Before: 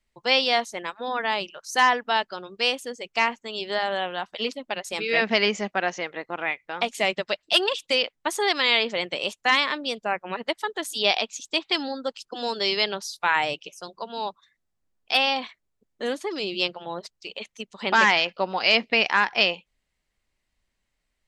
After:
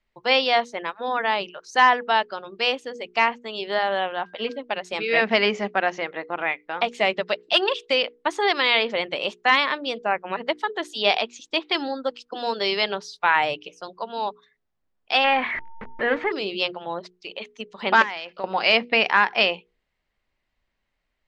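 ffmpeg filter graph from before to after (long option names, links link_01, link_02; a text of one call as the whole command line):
ffmpeg -i in.wav -filter_complex "[0:a]asettb=1/sr,asplit=3[link_01][link_02][link_03];[link_01]atrim=end=4.124[link_04];[link_02]atrim=start=4.12:end=4.59,asetpts=PTS-STARTPTS,afade=type=in:duration=0.004:curve=qsin,afade=type=out:start_time=0.466:duration=0.004:curve=qsin,lowpass=frequency=3000:poles=1,aeval=exprs='val(0)+0.002*sin(2*PI*1600*n/s)':channel_layout=same[link_05];[link_03]atrim=start=4.586[link_06];[link_04][link_05]acrossfade=duration=0.004:curve1=hsin:curve2=qsin[link_07];[link_07][link_06]acrossfade=duration=0.004:curve1=qsin:curve2=hsin,asettb=1/sr,asplit=3[link_08][link_09][link_10];[link_08]atrim=end=15.244[link_11];[link_09]atrim=start=15.24:end=16.32,asetpts=PTS-STARTPTS,afade=type=in:duration=0.004:curve=qsin,afade=type=out:start_time=1.076:duration=0.004:curve=qsin,aeval=exprs='val(0)+0.5*0.0282*sgn(val(0))':channel_layout=same,lowpass=frequency=2000:width_type=q:width=3.1,aeval=exprs='val(0)+0.00316*sin(2*PI*910*n/s)':channel_layout=same[link_12];[link_10]atrim=start=16.316[link_13];[link_11][link_12]acrossfade=duration=0.004:curve1=hsin:curve2=qsin[link_14];[link_14][link_13]acrossfade=duration=0.004:curve1=qsin:curve2=hsin,asettb=1/sr,asplit=3[link_15][link_16][link_17];[link_15]atrim=end=18.024[link_18];[link_16]atrim=start=18.02:end=18.44,asetpts=PTS-STARTPTS,afade=type=in:duration=0.004:curve=qsin,afade=type=out:start_time=0.416:duration=0.004:curve=qsin,bass=frequency=250:gain=-3,treble=frequency=4000:gain=4,acompressor=threshold=-34dB:ratio=3:attack=3.2:release=140:knee=1:detection=peak[link_19];[link_17]atrim=start=18.436[link_20];[link_18][link_19]acrossfade=duration=0.004:curve1=hsin:curve2=qsin[link_21];[link_21][link_20]acrossfade=duration=0.004:curve1=qsin:curve2=hsin,lowpass=4300,equalizer=frequency=820:width_type=o:width=3:gain=3.5,bandreject=frequency=60:width_type=h:width=6,bandreject=frequency=120:width_type=h:width=6,bandreject=frequency=180:width_type=h:width=6,bandreject=frequency=240:width_type=h:width=6,bandreject=frequency=300:width_type=h:width=6,bandreject=frequency=360:width_type=h:width=6,bandreject=frequency=420:width_type=h:width=6,bandreject=frequency=480:width_type=h:width=6" out.wav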